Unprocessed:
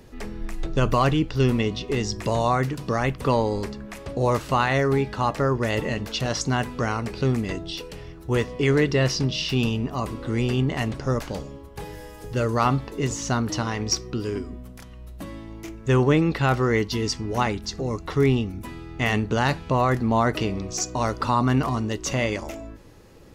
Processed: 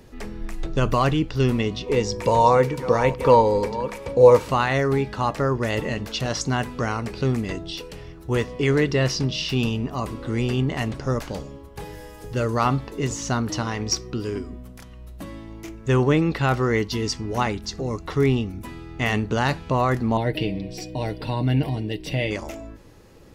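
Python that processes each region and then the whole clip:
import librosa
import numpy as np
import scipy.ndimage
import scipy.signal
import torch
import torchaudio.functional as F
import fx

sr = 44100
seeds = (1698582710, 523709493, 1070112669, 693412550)

y = fx.chain(x, sr, fx.reverse_delay(ms=428, wet_db=-13.5),
    fx.small_body(hz=(500.0, 930.0, 2300.0), ring_ms=95, db=17), at=(1.86, 4.49))
y = fx.chain(y, sr, fx.fixed_phaser(hz=2900.0, stages=4),
    fx.comb(ms=6.4, depth=0.53), at=(20.17, 22.31))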